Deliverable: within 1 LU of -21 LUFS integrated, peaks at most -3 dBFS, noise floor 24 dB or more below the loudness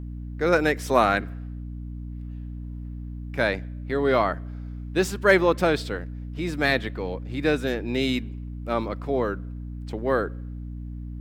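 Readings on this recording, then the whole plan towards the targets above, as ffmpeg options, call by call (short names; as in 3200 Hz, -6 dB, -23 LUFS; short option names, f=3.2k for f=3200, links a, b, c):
hum 60 Hz; harmonics up to 300 Hz; hum level -32 dBFS; loudness -25.0 LUFS; peak -5.0 dBFS; loudness target -21.0 LUFS
-> -af "bandreject=f=60:t=h:w=4,bandreject=f=120:t=h:w=4,bandreject=f=180:t=h:w=4,bandreject=f=240:t=h:w=4,bandreject=f=300:t=h:w=4"
-af "volume=4dB,alimiter=limit=-3dB:level=0:latency=1"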